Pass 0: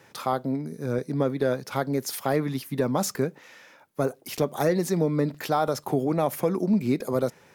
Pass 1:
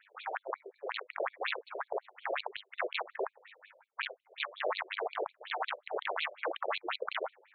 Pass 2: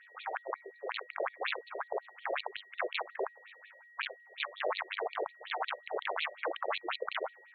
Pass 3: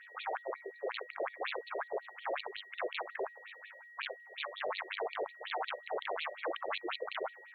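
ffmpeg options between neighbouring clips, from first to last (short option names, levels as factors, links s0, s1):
-af "tremolo=f=100:d=0.621,aeval=exprs='(mod(11.9*val(0)+1,2)-1)/11.9':c=same,afftfilt=real='re*between(b*sr/1024,480*pow(3200/480,0.5+0.5*sin(2*PI*5.5*pts/sr))/1.41,480*pow(3200/480,0.5+0.5*sin(2*PI*5.5*pts/sr))*1.41)':imag='im*between(b*sr/1024,480*pow(3200/480,0.5+0.5*sin(2*PI*5.5*pts/sr))/1.41,480*pow(3200/480,0.5+0.5*sin(2*PI*5.5*pts/sr))*1.41)':win_size=1024:overlap=0.75,volume=1.19"
-af "aeval=exprs='val(0)+0.00158*sin(2*PI*1900*n/s)':c=same"
-af "alimiter=level_in=2.51:limit=0.0631:level=0:latency=1:release=11,volume=0.398,volume=1.5"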